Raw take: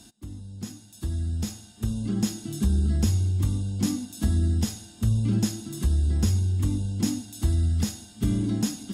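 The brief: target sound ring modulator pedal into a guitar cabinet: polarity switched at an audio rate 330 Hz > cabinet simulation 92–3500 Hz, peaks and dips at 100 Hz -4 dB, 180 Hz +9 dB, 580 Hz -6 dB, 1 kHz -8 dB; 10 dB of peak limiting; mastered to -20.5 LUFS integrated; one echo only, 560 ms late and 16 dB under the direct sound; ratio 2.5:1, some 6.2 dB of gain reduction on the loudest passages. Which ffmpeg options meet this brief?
-af "acompressor=threshold=0.0398:ratio=2.5,alimiter=level_in=1.5:limit=0.0631:level=0:latency=1,volume=0.668,aecho=1:1:560:0.158,aeval=exprs='val(0)*sgn(sin(2*PI*330*n/s))':c=same,highpass=92,equalizer=f=100:t=q:w=4:g=-4,equalizer=f=180:t=q:w=4:g=9,equalizer=f=580:t=q:w=4:g=-6,equalizer=f=1000:t=q:w=4:g=-8,lowpass=f=3500:w=0.5412,lowpass=f=3500:w=1.3066,volume=5.62"

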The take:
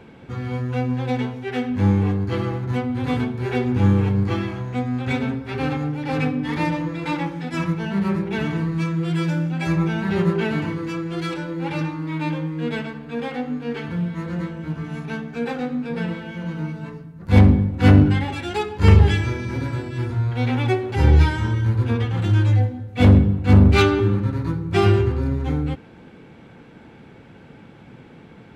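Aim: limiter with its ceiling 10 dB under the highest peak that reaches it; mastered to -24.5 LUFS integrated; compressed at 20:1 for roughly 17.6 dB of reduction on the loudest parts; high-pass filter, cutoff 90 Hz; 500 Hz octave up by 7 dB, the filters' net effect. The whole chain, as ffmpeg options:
-af "highpass=90,equalizer=f=500:t=o:g=9,acompressor=threshold=0.0631:ratio=20,volume=2.82,alimiter=limit=0.15:level=0:latency=1"

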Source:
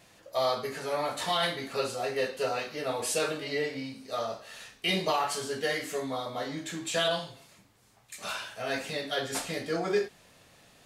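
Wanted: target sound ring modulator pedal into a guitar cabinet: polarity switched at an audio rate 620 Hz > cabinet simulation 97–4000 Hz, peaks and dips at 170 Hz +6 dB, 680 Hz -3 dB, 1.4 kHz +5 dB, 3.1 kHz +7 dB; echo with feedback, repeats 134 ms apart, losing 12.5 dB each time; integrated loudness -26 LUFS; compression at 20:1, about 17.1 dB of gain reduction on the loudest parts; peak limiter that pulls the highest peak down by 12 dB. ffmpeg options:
-af "acompressor=threshold=0.01:ratio=20,alimiter=level_in=5.31:limit=0.0631:level=0:latency=1,volume=0.188,aecho=1:1:134|268|402:0.237|0.0569|0.0137,aeval=exprs='val(0)*sgn(sin(2*PI*620*n/s))':c=same,highpass=97,equalizer=f=170:t=q:w=4:g=6,equalizer=f=680:t=q:w=4:g=-3,equalizer=f=1400:t=q:w=4:g=5,equalizer=f=3100:t=q:w=4:g=7,lowpass=f=4000:w=0.5412,lowpass=f=4000:w=1.3066,volume=9.44"

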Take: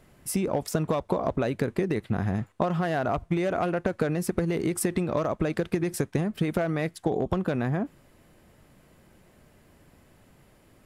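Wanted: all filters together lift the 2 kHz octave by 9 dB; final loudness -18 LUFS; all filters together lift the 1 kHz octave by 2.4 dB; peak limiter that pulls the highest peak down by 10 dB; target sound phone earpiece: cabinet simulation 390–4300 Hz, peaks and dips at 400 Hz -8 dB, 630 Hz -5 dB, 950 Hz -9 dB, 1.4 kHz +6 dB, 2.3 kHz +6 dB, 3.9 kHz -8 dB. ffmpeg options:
-af "equalizer=f=1000:t=o:g=6,equalizer=f=2000:t=o:g=5,alimiter=limit=0.141:level=0:latency=1,highpass=390,equalizer=f=400:t=q:w=4:g=-8,equalizer=f=630:t=q:w=4:g=-5,equalizer=f=950:t=q:w=4:g=-9,equalizer=f=1400:t=q:w=4:g=6,equalizer=f=2300:t=q:w=4:g=6,equalizer=f=3900:t=q:w=4:g=-8,lowpass=f=4300:w=0.5412,lowpass=f=4300:w=1.3066,volume=5.01"

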